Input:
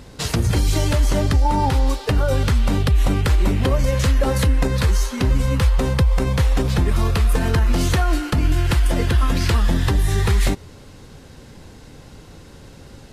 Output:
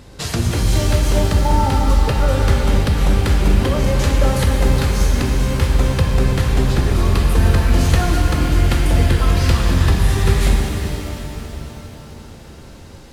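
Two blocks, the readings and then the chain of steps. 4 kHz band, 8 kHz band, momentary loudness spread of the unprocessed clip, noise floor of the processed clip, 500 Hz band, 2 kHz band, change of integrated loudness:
+2.5 dB, +2.5 dB, 2 LU, -38 dBFS, +2.5 dB, +2.5 dB, +2.5 dB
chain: pitch-shifted reverb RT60 3.6 s, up +7 st, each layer -8 dB, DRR 0 dB; trim -1 dB

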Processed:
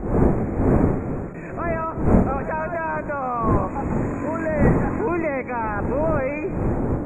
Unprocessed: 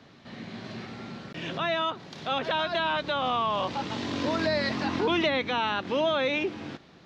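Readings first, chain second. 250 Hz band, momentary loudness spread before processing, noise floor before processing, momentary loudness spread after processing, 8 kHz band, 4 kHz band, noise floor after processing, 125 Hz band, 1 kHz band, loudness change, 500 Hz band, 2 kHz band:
+10.0 dB, 15 LU, -54 dBFS, 7 LU, no reading, under -40 dB, -31 dBFS, +17.0 dB, +3.5 dB, +5.0 dB, +6.0 dB, 0.0 dB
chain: wind noise 340 Hz -26 dBFS; FFT band-reject 2.6–6.6 kHz; peaking EQ 3.1 kHz -12 dB 0.8 oct; filtered feedback delay 129 ms, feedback 71%, level -16.5 dB; trim +3 dB

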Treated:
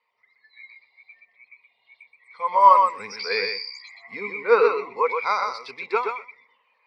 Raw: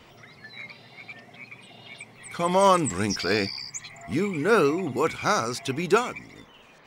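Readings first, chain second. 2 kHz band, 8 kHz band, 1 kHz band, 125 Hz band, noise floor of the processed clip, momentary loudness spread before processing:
+1.0 dB, under -15 dB, +7.0 dB, under -20 dB, -69 dBFS, 22 LU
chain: high-pass 96 Hz; three-band isolator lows -20 dB, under 570 Hz, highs -22 dB, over 5.9 kHz; gain riding within 5 dB 2 s; rippled EQ curve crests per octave 0.92, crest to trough 9 dB; thinning echo 125 ms, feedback 19%, high-pass 150 Hz, level -3.5 dB; spectral contrast expander 1.5:1; trim +4.5 dB

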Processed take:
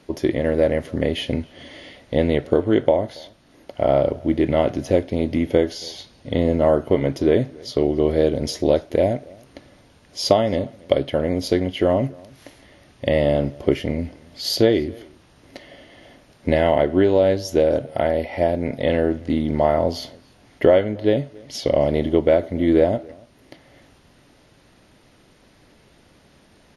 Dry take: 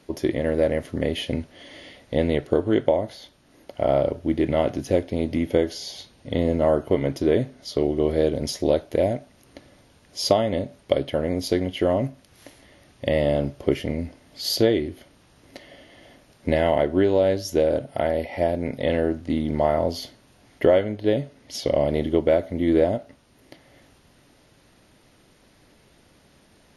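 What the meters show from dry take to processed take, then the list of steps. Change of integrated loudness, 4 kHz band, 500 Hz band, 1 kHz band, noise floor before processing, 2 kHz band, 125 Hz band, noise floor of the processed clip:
+3.0 dB, +2.0 dB, +3.0 dB, +3.0 dB, -57 dBFS, +3.0 dB, +3.0 dB, -54 dBFS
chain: treble shelf 9.6 kHz -8 dB; echo from a far wall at 48 m, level -25 dB; trim +3 dB

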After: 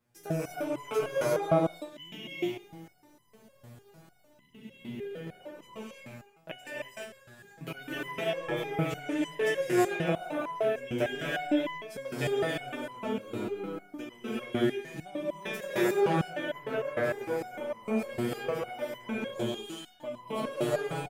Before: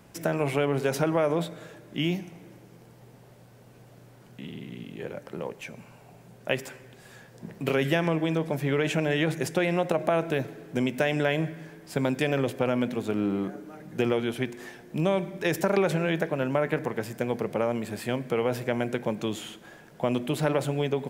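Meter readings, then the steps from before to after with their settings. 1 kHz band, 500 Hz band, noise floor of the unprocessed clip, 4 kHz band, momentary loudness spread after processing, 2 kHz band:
-2.5 dB, -3.5 dB, -53 dBFS, -4.0 dB, 17 LU, -4.0 dB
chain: gate -47 dBFS, range -14 dB; treble shelf 11 kHz +5 dB; transient shaper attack +1 dB, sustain -5 dB; reverse; upward compressor, threshold -37 dBFS; reverse; speakerphone echo 140 ms, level -6 dB; gated-style reverb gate 380 ms rising, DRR -5 dB; resonator arpeggio 6.6 Hz 120–1000 Hz; trim +3 dB

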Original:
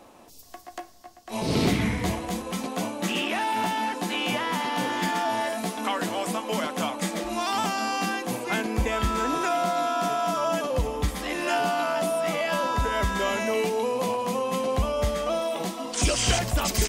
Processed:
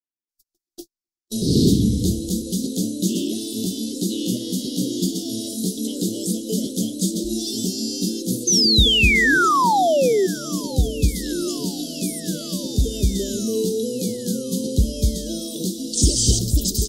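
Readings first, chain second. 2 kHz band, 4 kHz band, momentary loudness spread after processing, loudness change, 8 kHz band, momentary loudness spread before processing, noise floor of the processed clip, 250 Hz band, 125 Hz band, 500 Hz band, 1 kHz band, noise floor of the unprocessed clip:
+5.5 dB, +8.5 dB, 11 LU, +5.5 dB, +9.0 dB, 5 LU, under -85 dBFS, +8.5 dB, +8.0 dB, +2.0 dB, -0.5 dB, -50 dBFS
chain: inverse Chebyshev band-stop 810–2500 Hz, stop band 40 dB; gate -42 dBFS, range -55 dB; high-order bell 810 Hz -10.5 dB; level rider gain up to 8.5 dB; painted sound fall, 8.47–10.27 s, 360–6400 Hz -17 dBFS; thinning echo 992 ms, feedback 63%, high-pass 890 Hz, level -21.5 dB; tape noise reduction on one side only encoder only

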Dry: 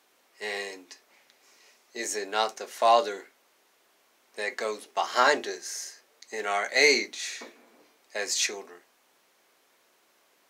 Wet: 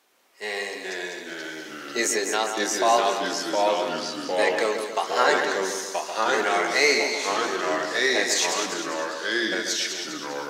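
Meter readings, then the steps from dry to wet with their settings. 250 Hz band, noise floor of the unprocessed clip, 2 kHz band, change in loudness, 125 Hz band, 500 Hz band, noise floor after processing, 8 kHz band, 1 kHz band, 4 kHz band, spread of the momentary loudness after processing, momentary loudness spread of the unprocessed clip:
+11.0 dB, -66 dBFS, +5.5 dB, +3.0 dB, no reading, +6.0 dB, -38 dBFS, +6.0 dB, +4.5 dB, +6.0 dB, 11 LU, 19 LU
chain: recorder AGC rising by 5.4 dB/s; ever faster or slower copies 369 ms, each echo -2 st, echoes 3; two-band feedback delay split 2.7 kHz, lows 139 ms, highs 200 ms, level -6.5 dB

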